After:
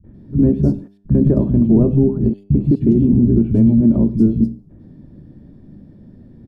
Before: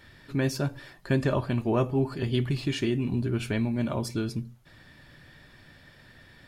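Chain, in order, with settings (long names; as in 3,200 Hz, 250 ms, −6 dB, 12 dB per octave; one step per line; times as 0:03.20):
sub-octave generator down 1 octave, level −3 dB
drawn EQ curve 100 Hz 0 dB, 220 Hz +13 dB, 1,700 Hz −27 dB
0:00.65–0:02.76: gate pattern ".x.x.xxxxxx" 72 BPM −60 dB
tuned comb filter 100 Hz, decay 0.64 s, harmonics all, mix 40%
three-band delay without the direct sound lows, mids, highs 40/140 ms, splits 180/2,700 Hz
boost into a limiter +17 dB
level −3.5 dB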